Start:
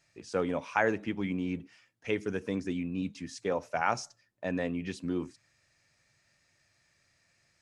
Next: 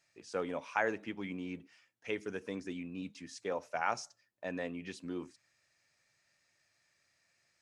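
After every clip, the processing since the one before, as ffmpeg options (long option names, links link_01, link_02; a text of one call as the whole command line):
ffmpeg -i in.wav -af "lowshelf=frequency=200:gain=-11,volume=-4dB" out.wav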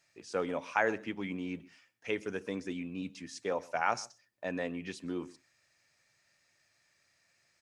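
ffmpeg -i in.wav -filter_complex "[0:a]asplit=2[link_01][link_02];[link_02]adelay=128.3,volume=-22dB,highshelf=frequency=4000:gain=-2.89[link_03];[link_01][link_03]amix=inputs=2:normalize=0,volume=3dB" out.wav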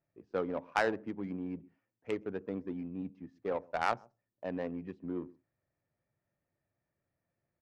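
ffmpeg -i in.wav -af "adynamicsmooth=sensitivity=1.5:basefreq=620" out.wav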